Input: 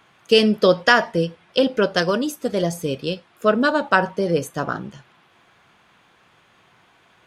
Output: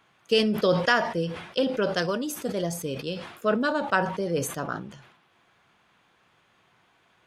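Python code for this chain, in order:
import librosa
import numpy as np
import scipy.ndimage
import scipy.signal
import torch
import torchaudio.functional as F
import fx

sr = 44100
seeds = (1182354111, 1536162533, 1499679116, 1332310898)

y = fx.sustainer(x, sr, db_per_s=74.0)
y = y * librosa.db_to_amplitude(-7.5)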